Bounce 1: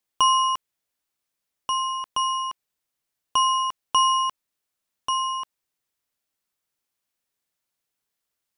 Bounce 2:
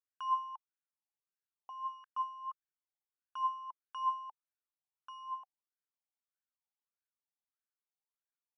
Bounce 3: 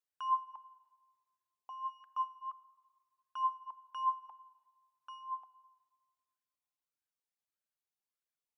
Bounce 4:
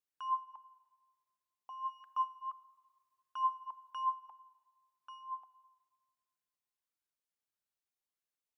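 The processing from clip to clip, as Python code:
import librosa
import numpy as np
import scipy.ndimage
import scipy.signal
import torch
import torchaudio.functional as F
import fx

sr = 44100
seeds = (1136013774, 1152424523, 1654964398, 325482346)

y1 = fx.wah_lfo(x, sr, hz=1.6, low_hz=770.0, high_hz=1600.0, q=8.7)
y1 = y1 * librosa.db_to_amplitude(-7.0)
y2 = fx.dereverb_blind(y1, sr, rt60_s=0.62)
y2 = fx.room_shoebox(y2, sr, seeds[0], volume_m3=2700.0, walls='mixed', distance_m=0.37)
y3 = fx.rider(y2, sr, range_db=5, speed_s=0.5)
y3 = y3 * librosa.db_to_amplitude(1.0)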